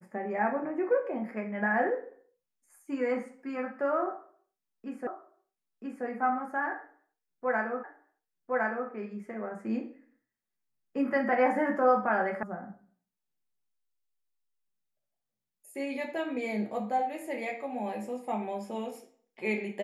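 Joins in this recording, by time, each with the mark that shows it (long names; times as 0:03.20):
0:05.07: the same again, the last 0.98 s
0:07.84: the same again, the last 1.06 s
0:12.43: cut off before it has died away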